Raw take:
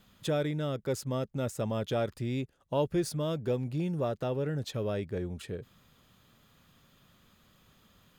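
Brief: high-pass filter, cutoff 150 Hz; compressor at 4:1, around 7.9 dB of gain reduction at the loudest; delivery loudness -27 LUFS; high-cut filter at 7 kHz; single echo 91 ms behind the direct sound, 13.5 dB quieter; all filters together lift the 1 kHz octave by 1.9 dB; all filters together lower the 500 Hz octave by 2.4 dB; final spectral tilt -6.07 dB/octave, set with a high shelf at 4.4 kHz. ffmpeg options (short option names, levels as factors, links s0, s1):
-af "highpass=150,lowpass=7000,equalizer=f=500:t=o:g=-4,equalizer=f=1000:t=o:g=4.5,highshelf=f=4400:g=-8,acompressor=threshold=0.0178:ratio=4,aecho=1:1:91:0.211,volume=4.47"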